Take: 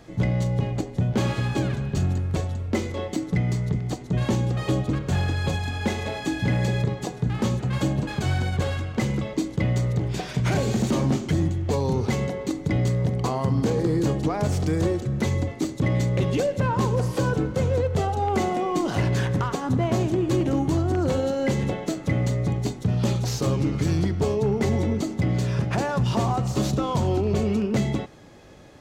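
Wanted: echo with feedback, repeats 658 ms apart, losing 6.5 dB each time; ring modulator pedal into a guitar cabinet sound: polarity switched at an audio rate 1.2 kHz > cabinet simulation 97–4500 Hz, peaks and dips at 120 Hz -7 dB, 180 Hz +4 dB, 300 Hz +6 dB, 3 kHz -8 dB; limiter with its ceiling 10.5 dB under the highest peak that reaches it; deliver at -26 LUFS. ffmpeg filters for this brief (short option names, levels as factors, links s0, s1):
-af "alimiter=level_in=1.19:limit=0.0631:level=0:latency=1,volume=0.841,aecho=1:1:658|1316|1974|2632|3290|3948:0.473|0.222|0.105|0.0491|0.0231|0.0109,aeval=exprs='val(0)*sgn(sin(2*PI*1200*n/s))':c=same,highpass=97,equalizer=f=120:t=q:w=4:g=-7,equalizer=f=180:t=q:w=4:g=4,equalizer=f=300:t=q:w=4:g=6,equalizer=f=3000:t=q:w=4:g=-8,lowpass=f=4500:w=0.5412,lowpass=f=4500:w=1.3066,volume=1.78"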